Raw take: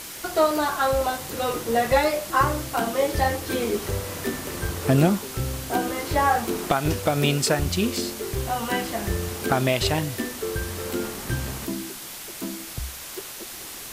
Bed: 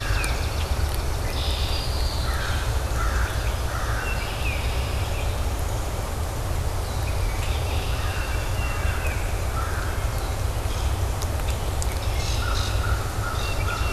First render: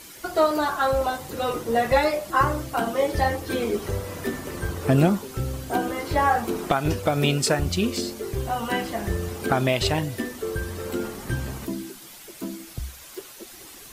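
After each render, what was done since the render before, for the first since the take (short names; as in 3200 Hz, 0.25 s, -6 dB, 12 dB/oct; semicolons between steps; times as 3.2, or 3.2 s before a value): denoiser 9 dB, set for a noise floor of -38 dBFS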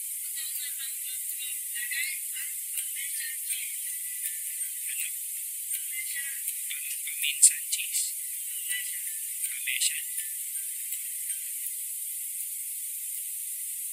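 Chebyshev high-pass 2000 Hz, order 6; resonant high shelf 7200 Hz +9 dB, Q 3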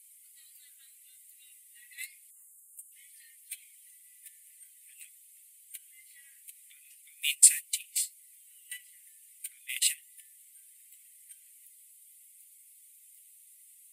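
gate -27 dBFS, range -22 dB; 2.31–2.92 spectral gain 1300–6400 Hz -22 dB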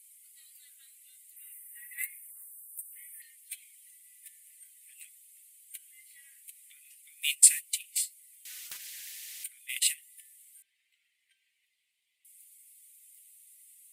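1.36–3.22 EQ curve 520 Hz 0 dB, 1100 Hz +7 dB, 1700 Hz +9 dB, 2900 Hz -3 dB, 5000 Hz -21 dB, 8600 Hz +4 dB, 15000 Hz +12 dB; 8.45–9.44 spectral compressor 10:1; 10.62–12.25 air absorption 240 m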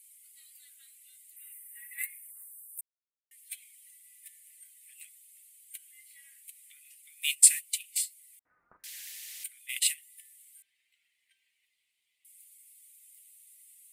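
2.81–3.31 mute; 8.39–8.84 elliptic low-pass 1300 Hz, stop band 60 dB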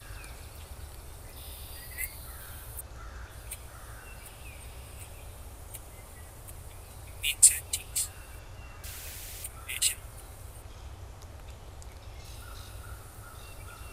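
add bed -20.5 dB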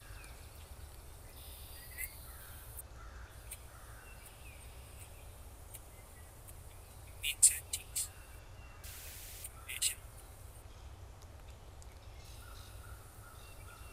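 gain -7 dB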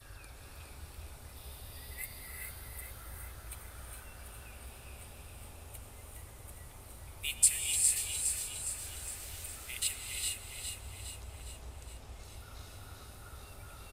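on a send: feedback echo 0.411 s, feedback 55%, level -6 dB; on the sum: non-linear reverb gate 0.48 s rising, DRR 2 dB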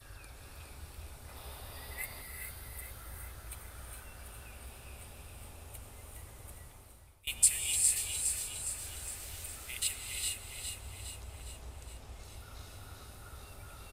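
1.28–2.22 bell 960 Hz +6.5 dB 2.6 oct; 6.52–7.27 fade out, to -22 dB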